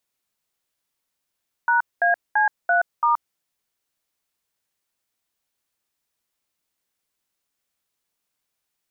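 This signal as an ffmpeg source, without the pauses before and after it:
-f lavfi -i "aevalsrc='0.126*clip(min(mod(t,0.337),0.125-mod(t,0.337))/0.002,0,1)*(eq(floor(t/0.337),0)*(sin(2*PI*941*mod(t,0.337))+sin(2*PI*1477*mod(t,0.337)))+eq(floor(t/0.337),1)*(sin(2*PI*697*mod(t,0.337))+sin(2*PI*1633*mod(t,0.337)))+eq(floor(t/0.337),2)*(sin(2*PI*852*mod(t,0.337))+sin(2*PI*1633*mod(t,0.337)))+eq(floor(t/0.337),3)*(sin(2*PI*697*mod(t,0.337))+sin(2*PI*1477*mod(t,0.337)))+eq(floor(t/0.337),4)*(sin(2*PI*941*mod(t,0.337))+sin(2*PI*1209*mod(t,0.337))))':d=1.685:s=44100"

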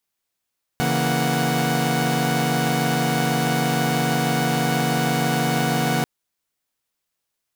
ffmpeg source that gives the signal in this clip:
-f lavfi -i "aevalsrc='0.0794*((2*mod(138.59*t,1)-1)+(2*mod(164.81*t,1)-1)+(2*mod(233.08*t,1)-1)+(2*mod(739.99*t,1)-1))':d=5.24:s=44100"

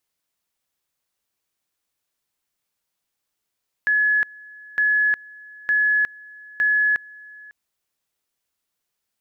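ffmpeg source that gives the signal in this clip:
-f lavfi -i "aevalsrc='pow(10,(-15.5-24*gte(mod(t,0.91),0.36))/20)*sin(2*PI*1700*t)':d=3.64:s=44100"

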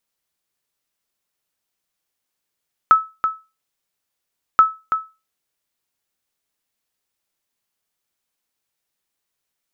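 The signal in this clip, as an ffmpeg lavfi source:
-f lavfi -i "aevalsrc='0.708*(sin(2*PI*1300*mod(t,1.68))*exp(-6.91*mod(t,1.68)/0.27)+0.376*sin(2*PI*1300*max(mod(t,1.68)-0.33,0))*exp(-6.91*max(mod(t,1.68)-0.33,0)/0.27))':d=3.36:s=44100"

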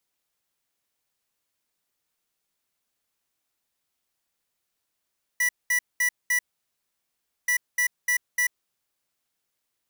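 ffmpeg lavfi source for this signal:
-f lavfi -i "aevalsrc='0.075*(2*lt(mod(1960*t,1),0.5)-1)*clip(min(mod(mod(t,2.08),0.3),0.09-mod(mod(t,2.08),0.3))/0.005,0,1)*lt(mod(t,2.08),1.2)':d=4.16:s=44100"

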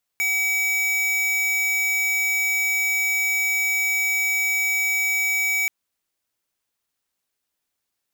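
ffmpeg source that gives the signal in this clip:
-f lavfi -i "aevalsrc='0.0794*(2*lt(mod(2280*t,1),0.5)-1)':d=5.48:s=44100"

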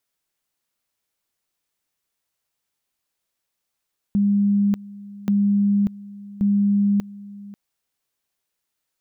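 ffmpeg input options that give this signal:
-f lavfi -i "aevalsrc='pow(10,(-15-20*gte(mod(t,1.13),0.59))/20)*sin(2*PI*202*t)':d=3.39:s=44100"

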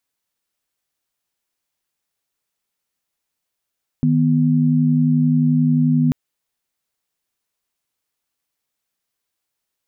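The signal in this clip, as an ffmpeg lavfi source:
-f lavfi -i "aevalsrc='0.168*(sin(2*PI*155.56*t)+sin(2*PI*246.94*t))':d=2.09:s=44100"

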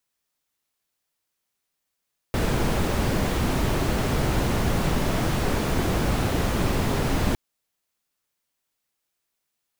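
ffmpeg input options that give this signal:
-f lavfi -i "anoisesrc=c=brown:a=0.351:d=5.01:r=44100:seed=1"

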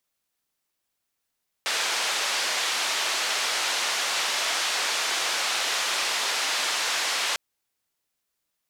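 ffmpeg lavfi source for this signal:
-f lavfi -i "anoisesrc=c=white:d=5.7:r=44100:seed=1,highpass=f=610,lowpass=f=5200,volume=-15.1dB"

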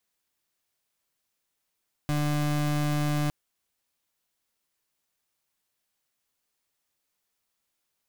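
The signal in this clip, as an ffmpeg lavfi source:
-f lavfi -i "aevalsrc='0.0501*(2*lt(mod(148*t,1),0.32)-1)':d=1.21:s=44100"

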